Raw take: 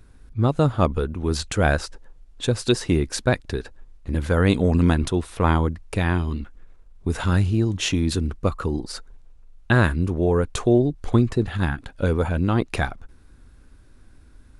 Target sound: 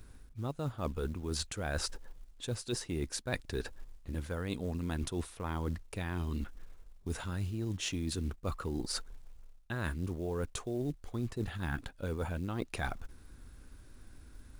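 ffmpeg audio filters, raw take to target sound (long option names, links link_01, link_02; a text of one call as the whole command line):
ffmpeg -i in.wav -af "highshelf=frequency=4900:gain=6,areverse,acompressor=threshold=-29dB:ratio=16,areverse,acrusher=bits=7:mode=log:mix=0:aa=0.000001,volume=-3dB" out.wav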